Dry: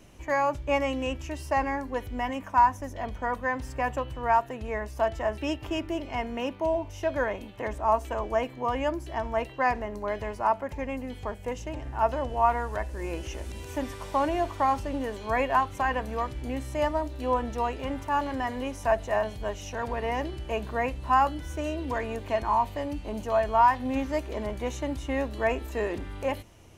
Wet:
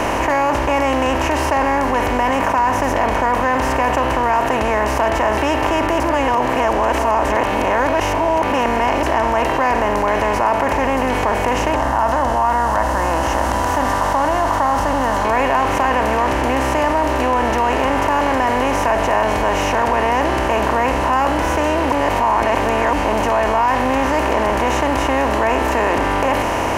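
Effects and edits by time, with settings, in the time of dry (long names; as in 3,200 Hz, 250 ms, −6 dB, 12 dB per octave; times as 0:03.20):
0:06.00–0:09.03: reverse
0:11.76–0:15.25: phaser with its sweep stopped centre 1,000 Hz, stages 4
0:21.92–0:22.93: reverse
whole clip: compressor on every frequency bin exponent 0.4; envelope flattener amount 70%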